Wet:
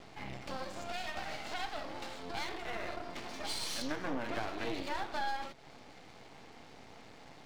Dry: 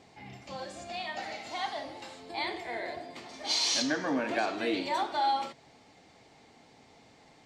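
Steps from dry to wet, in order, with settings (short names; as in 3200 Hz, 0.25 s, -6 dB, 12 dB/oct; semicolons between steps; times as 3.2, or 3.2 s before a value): compressor 2.5:1, threshold -44 dBFS, peak gain reduction 13 dB; air absorption 78 m; half-wave rectifier; gain +8.5 dB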